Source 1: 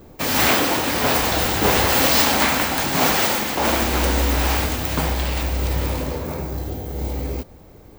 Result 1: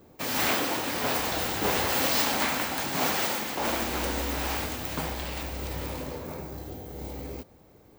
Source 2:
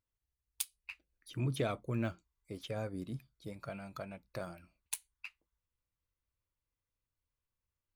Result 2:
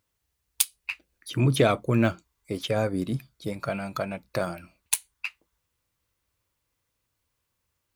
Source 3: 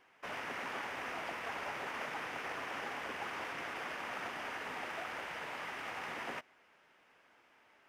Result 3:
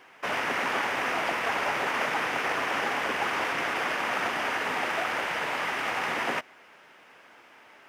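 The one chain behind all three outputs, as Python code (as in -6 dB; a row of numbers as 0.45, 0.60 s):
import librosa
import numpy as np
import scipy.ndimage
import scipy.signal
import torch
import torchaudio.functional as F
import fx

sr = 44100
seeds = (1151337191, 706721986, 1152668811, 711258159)

y = fx.highpass(x, sr, hz=110.0, slope=6)
y = y * 10.0 ** (-30 / 20.0) / np.sqrt(np.mean(np.square(y)))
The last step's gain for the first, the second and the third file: -8.5, +14.5, +13.0 dB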